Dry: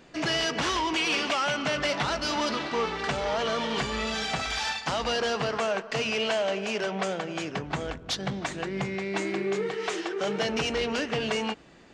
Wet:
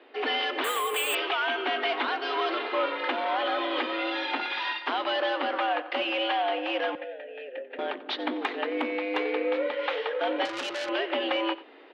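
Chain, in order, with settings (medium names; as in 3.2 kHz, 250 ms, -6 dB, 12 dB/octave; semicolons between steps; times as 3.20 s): in parallel at +0.5 dB: gain riding within 5 dB 0.5 s; on the sum: mistuned SSB +110 Hz 160–3600 Hz; 6.95–7.79 s: vowel filter e; on a send: delay 91 ms -17.5 dB; on the sum: Chebyshev shaper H 3 -39 dB, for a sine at -9.5 dBFS; 0.64–1.15 s: careless resampling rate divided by 4×, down filtered, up hold; 10.45–10.89 s: transformer saturation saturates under 4 kHz; trim -5.5 dB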